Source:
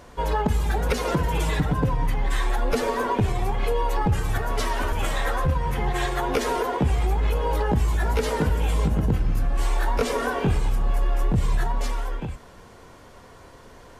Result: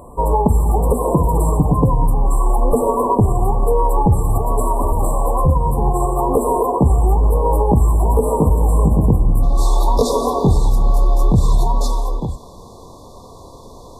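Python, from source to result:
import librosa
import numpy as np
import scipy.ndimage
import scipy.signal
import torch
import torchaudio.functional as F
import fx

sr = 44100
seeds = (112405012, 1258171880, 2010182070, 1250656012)

y = fx.brickwall_bandstop(x, sr, low_hz=1200.0, high_hz=fx.steps((0.0, 7400.0), (9.42, 3400.0)))
y = F.gain(torch.from_numpy(y), 8.5).numpy()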